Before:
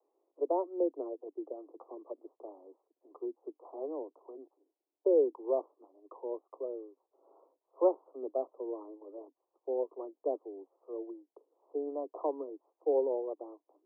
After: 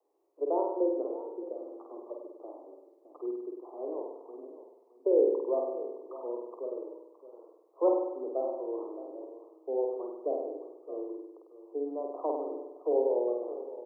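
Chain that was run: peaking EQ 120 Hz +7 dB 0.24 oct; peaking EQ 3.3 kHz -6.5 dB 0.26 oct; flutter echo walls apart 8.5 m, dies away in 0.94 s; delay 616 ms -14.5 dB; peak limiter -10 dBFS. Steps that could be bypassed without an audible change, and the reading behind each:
peaking EQ 120 Hz: input has nothing below 240 Hz; peaking EQ 3.3 kHz: input has nothing above 1.1 kHz; peak limiter -10 dBFS: peak at its input -14.0 dBFS

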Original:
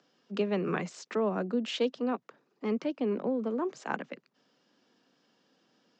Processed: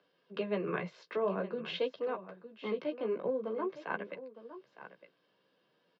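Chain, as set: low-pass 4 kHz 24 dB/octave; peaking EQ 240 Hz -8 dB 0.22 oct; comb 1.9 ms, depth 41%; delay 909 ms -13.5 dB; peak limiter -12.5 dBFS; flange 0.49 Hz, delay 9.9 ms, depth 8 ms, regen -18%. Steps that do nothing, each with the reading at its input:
peak limiter -12.5 dBFS: peak at its input -15.5 dBFS

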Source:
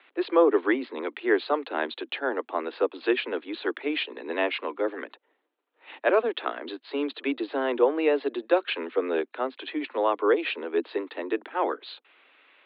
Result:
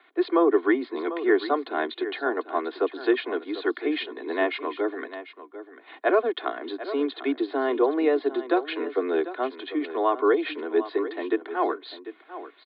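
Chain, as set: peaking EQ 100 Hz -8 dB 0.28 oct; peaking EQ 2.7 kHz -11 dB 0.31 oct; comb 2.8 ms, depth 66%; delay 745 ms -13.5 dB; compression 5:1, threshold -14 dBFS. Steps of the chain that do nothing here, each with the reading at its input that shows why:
peaking EQ 100 Hz: input has nothing below 210 Hz

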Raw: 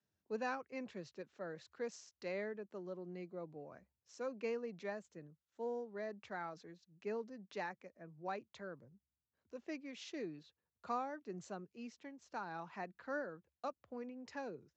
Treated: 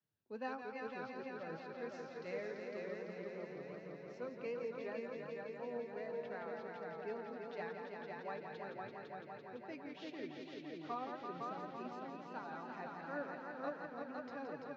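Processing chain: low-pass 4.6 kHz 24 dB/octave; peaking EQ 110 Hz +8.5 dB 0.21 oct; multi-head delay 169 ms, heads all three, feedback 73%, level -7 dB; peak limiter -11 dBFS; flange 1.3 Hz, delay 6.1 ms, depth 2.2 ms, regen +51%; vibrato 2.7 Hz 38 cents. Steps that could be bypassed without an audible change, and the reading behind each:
peak limiter -11 dBFS: peak at its input -25.0 dBFS

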